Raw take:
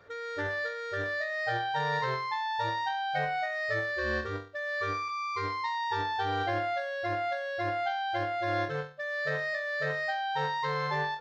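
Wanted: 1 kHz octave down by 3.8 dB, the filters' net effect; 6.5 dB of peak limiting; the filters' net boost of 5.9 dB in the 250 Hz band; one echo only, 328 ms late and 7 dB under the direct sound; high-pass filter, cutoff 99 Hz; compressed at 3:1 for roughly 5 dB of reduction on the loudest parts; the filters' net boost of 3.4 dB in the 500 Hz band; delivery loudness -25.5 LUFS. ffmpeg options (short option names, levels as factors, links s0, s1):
-af "highpass=99,equalizer=f=250:t=o:g=7.5,equalizer=f=500:t=o:g=5.5,equalizer=f=1000:t=o:g=-8.5,acompressor=threshold=0.0251:ratio=3,alimiter=level_in=1.58:limit=0.0631:level=0:latency=1,volume=0.631,aecho=1:1:328:0.447,volume=3.16"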